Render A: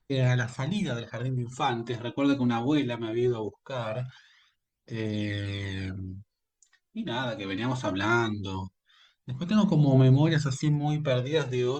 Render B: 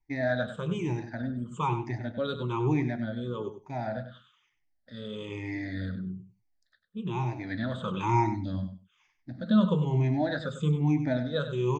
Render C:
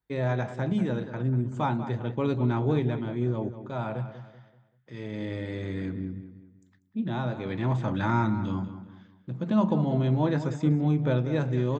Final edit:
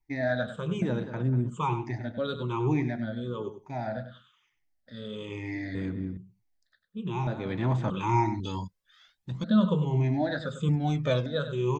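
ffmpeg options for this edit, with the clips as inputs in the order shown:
-filter_complex "[2:a]asplit=3[s0][s1][s2];[0:a]asplit=2[s3][s4];[1:a]asplit=6[s5][s6][s7][s8][s9][s10];[s5]atrim=end=0.822[s11];[s0]atrim=start=0.818:end=1.502[s12];[s6]atrim=start=1.498:end=5.752[s13];[s1]atrim=start=5.748:end=6.172[s14];[s7]atrim=start=6.168:end=7.272[s15];[s2]atrim=start=7.268:end=7.902[s16];[s8]atrim=start=7.898:end=8.402[s17];[s3]atrim=start=8.398:end=9.442[s18];[s9]atrim=start=9.438:end=10.692[s19];[s4]atrim=start=10.688:end=11.262[s20];[s10]atrim=start=11.258[s21];[s11][s12]acrossfade=d=0.004:c1=hsin:c2=hsin[s22];[s22][s13]acrossfade=d=0.004:c1=hsin:c2=hsin[s23];[s23][s14]acrossfade=d=0.004:c1=hsin:c2=hsin[s24];[s24][s15]acrossfade=d=0.004:c1=hsin:c2=hsin[s25];[s25][s16]acrossfade=d=0.004:c1=hsin:c2=hsin[s26];[s26][s17]acrossfade=d=0.004:c1=hsin:c2=hsin[s27];[s27][s18]acrossfade=d=0.004:c1=hsin:c2=hsin[s28];[s28][s19]acrossfade=d=0.004:c1=hsin:c2=hsin[s29];[s29][s20]acrossfade=d=0.004:c1=hsin:c2=hsin[s30];[s30][s21]acrossfade=d=0.004:c1=hsin:c2=hsin"

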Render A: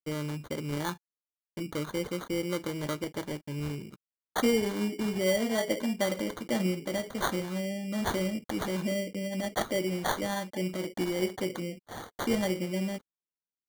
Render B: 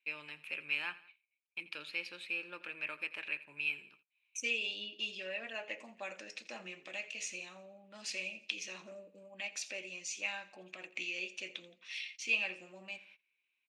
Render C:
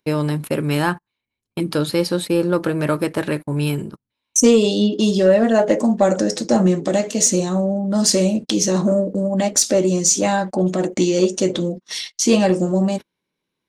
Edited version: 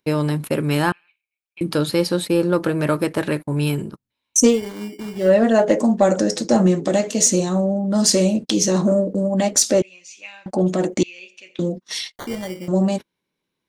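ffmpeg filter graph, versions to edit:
-filter_complex "[1:a]asplit=3[s0][s1][s2];[0:a]asplit=2[s3][s4];[2:a]asplit=6[s5][s6][s7][s8][s9][s10];[s5]atrim=end=0.922[s11];[s0]atrim=start=0.918:end=1.612[s12];[s6]atrim=start=1.608:end=4.61[s13];[s3]atrim=start=4.45:end=5.32[s14];[s7]atrim=start=5.16:end=9.822[s15];[s1]atrim=start=9.818:end=10.462[s16];[s8]atrim=start=10.458:end=11.032[s17];[s2]atrim=start=11.028:end=11.592[s18];[s9]atrim=start=11.588:end=12.162[s19];[s4]atrim=start=12.158:end=12.682[s20];[s10]atrim=start=12.678[s21];[s11][s12]acrossfade=d=0.004:c1=hsin:c2=hsin[s22];[s22][s13]acrossfade=d=0.004:c1=hsin:c2=hsin[s23];[s23][s14]acrossfade=d=0.16:c1=tri:c2=tri[s24];[s24][s15]acrossfade=d=0.16:c1=tri:c2=tri[s25];[s25][s16]acrossfade=d=0.004:c1=hsin:c2=hsin[s26];[s26][s17]acrossfade=d=0.004:c1=hsin:c2=hsin[s27];[s27][s18]acrossfade=d=0.004:c1=hsin:c2=hsin[s28];[s28][s19]acrossfade=d=0.004:c1=hsin:c2=hsin[s29];[s29][s20]acrossfade=d=0.004:c1=hsin:c2=hsin[s30];[s30][s21]acrossfade=d=0.004:c1=hsin:c2=hsin"

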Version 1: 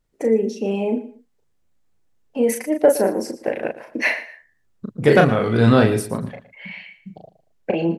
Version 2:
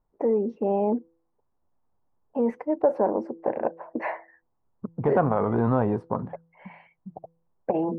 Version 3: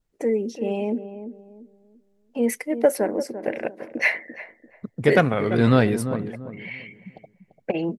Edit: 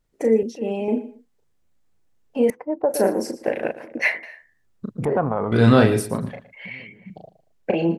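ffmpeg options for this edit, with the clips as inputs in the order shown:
-filter_complex "[2:a]asplit=3[s0][s1][s2];[1:a]asplit=2[s3][s4];[0:a]asplit=6[s5][s6][s7][s8][s9][s10];[s5]atrim=end=0.432[s11];[s0]atrim=start=0.428:end=0.882[s12];[s6]atrim=start=0.878:end=2.502[s13];[s3]atrim=start=2.498:end=2.942[s14];[s7]atrim=start=2.938:end=3.832[s15];[s1]atrim=start=3.828:end=4.232[s16];[s8]atrim=start=4.228:end=5.052[s17];[s4]atrim=start=5.048:end=5.522[s18];[s9]atrim=start=5.518:end=6.662[s19];[s2]atrim=start=6.658:end=7.102[s20];[s10]atrim=start=7.098[s21];[s11][s12]acrossfade=d=0.004:c1=hsin:c2=hsin[s22];[s22][s13]acrossfade=d=0.004:c1=hsin:c2=hsin[s23];[s23][s14]acrossfade=d=0.004:c1=hsin:c2=hsin[s24];[s24][s15]acrossfade=d=0.004:c1=hsin:c2=hsin[s25];[s25][s16]acrossfade=d=0.004:c1=hsin:c2=hsin[s26];[s26][s17]acrossfade=d=0.004:c1=hsin:c2=hsin[s27];[s27][s18]acrossfade=d=0.004:c1=hsin:c2=hsin[s28];[s28][s19]acrossfade=d=0.004:c1=hsin:c2=hsin[s29];[s29][s20]acrossfade=d=0.004:c1=hsin:c2=hsin[s30];[s30][s21]acrossfade=d=0.004:c1=hsin:c2=hsin"

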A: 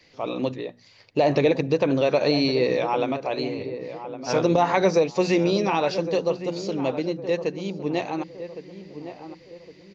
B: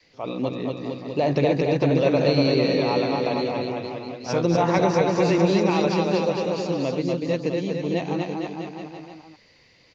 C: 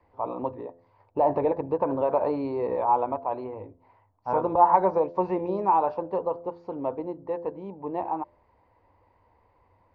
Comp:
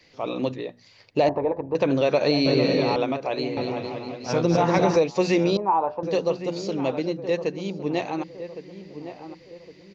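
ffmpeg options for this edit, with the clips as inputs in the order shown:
-filter_complex "[2:a]asplit=2[s0][s1];[1:a]asplit=2[s2][s3];[0:a]asplit=5[s4][s5][s6][s7][s8];[s4]atrim=end=1.292[s9];[s0]atrim=start=1.288:end=1.752[s10];[s5]atrim=start=1.748:end=2.462[s11];[s2]atrim=start=2.458:end=2.962[s12];[s6]atrim=start=2.958:end=3.572[s13];[s3]atrim=start=3.568:end=4.962[s14];[s7]atrim=start=4.958:end=5.572[s15];[s1]atrim=start=5.568:end=6.032[s16];[s8]atrim=start=6.028[s17];[s9][s10]acrossfade=d=0.004:c1=hsin:c2=hsin[s18];[s18][s11]acrossfade=d=0.004:c1=hsin:c2=hsin[s19];[s19][s12]acrossfade=d=0.004:c1=hsin:c2=hsin[s20];[s20][s13]acrossfade=d=0.004:c1=hsin:c2=hsin[s21];[s21][s14]acrossfade=d=0.004:c1=hsin:c2=hsin[s22];[s22][s15]acrossfade=d=0.004:c1=hsin:c2=hsin[s23];[s23][s16]acrossfade=d=0.004:c1=hsin:c2=hsin[s24];[s24][s17]acrossfade=d=0.004:c1=hsin:c2=hsin"

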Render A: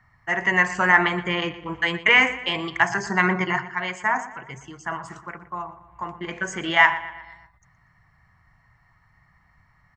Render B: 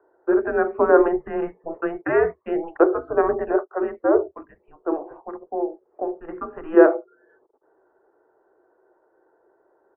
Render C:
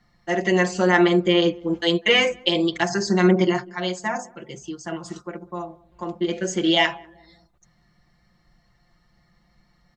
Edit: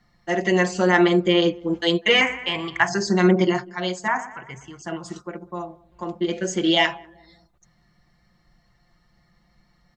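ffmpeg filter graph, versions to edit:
-filter_complex "[0:a]asplit=2[s0][s1];[2:a]asplit=3[s2][s3][s4];[s2]atrim=end=2.212[s5];[s0]atrim=start=2.208:end=2.882[s6];[s3]atrim=start=2.878:end=4.082[s7];[s1]atrim=start=4.078:end=4.822[s8];[s4]atrim=start=4.818[s9];[s5][s6]acrossfade=d=0.004:c1=hsin:c2=hsin[s10];[s10][s7]acrossfade=d=0.004:c1=hsin:c2=hsin[s11];[s11][s8]acrossfade=d=0.004:c1=hsin:c2=hsin[s12];[s12][s9]acrossfade=d=0.004:c1=hsin:c2=hsin"

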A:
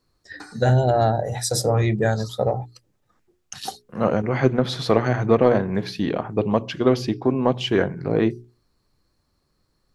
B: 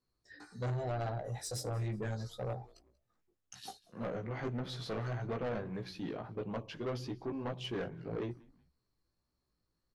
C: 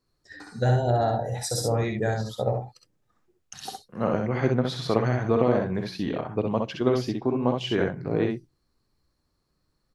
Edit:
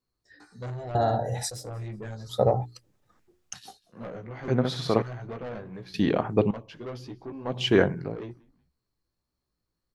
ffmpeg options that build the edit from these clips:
-filter_complex "[2:a]asplit=2[s0][s1];[0:a]asplit=3[s2][s3][s4];[1:a]asplit=6[s5][s6][s7][s8][s9][s10];[s5]atrim=end=0.952[s11];[s0]atrim=start=0.948:end=1.502[s12];[s6]atrim=start=1.498:end=2.36[s13];[s2]atrim=start=2.26:end=3.6[s14];[s7]atrim=start=3.5:end=4.482[s15];[s1]atrim=start=4.478:end=5.022[s16];[s8]atrim=start=5.018:end=5.942[s17];[s3]atrim=start=5.938:end=6.512[s18];[s9]atrim=start=6.508:end=7.68[s19];[s4]atrim=start=7.44:end=8.16[s20];[s10]atrim=start=7.92[s21];[s11][s12]acrossfade=d=0.004:c1=hsin:c2=hsin[s22];[s22][s13]acrossfade=d=0.004:c1=hsin:c2=hsin[s23];[s23][s14]acrossfade=d=0.1:c1=tri:c2=tri[s24];[s24][s15]acrossfade=d=0.1:c1=tri:c2=tri[s25];[s25][s16]acrossfade=d=0.004:c1=hsin:c2=hsin[s26];[s26][s17]acrossfade=d=0.004:c1=hsin:c2=hsin[s27];[s27][s18]acrossfade=d=0.004:c1=hsin:c2=hsin[s28];[s28][s19]acrossfade=d=0.004:c1=hsin:c2=hsin[s29];[s29][s20]acrossfade=d=0.24:c1=tri:c2=tri[s30];[s30][s21]acrossfade=d=0.24:c1=tri:c2=tri"

